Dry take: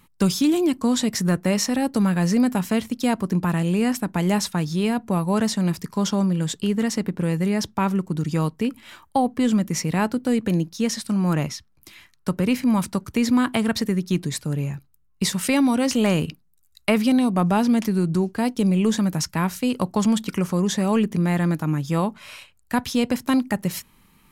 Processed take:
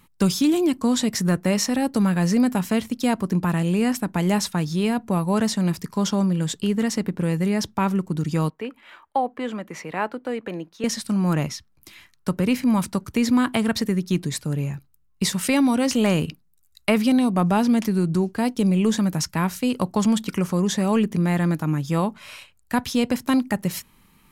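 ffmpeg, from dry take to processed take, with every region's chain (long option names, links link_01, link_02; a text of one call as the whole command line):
ffmpeg -i in.wav -filter_complex "[0:a]asettb=1/sr,asplit=3[link_01][link_02][link_03];[link_01]atrim=end=8.504[link_04];[link_02]atrim=start=8.5:end=10.84,asetpts=PTS-STARTPTS,afade=type=in:duration=0.004:curve=qsin,afade=type=out:start_time=2.336:duration=0.004:curve=qsin,acrossover=split=360 3000:gain=0.141 1 0.158[link_05][link_06][link_07];[link_05][link_06][link_07]amix=inputs=3:normalize=0,bandreject=frequency=5400:width=18[link_08];[link_03]atrim=start=10.836[link_09];[link_04][link_08]acrossfade=duration=0.004:curve1=hsin:curve2=qsin[link_10];[link_10][link_09]acrossfade=duration=0.004:curve1=qsin:curve2=hsin" out.wav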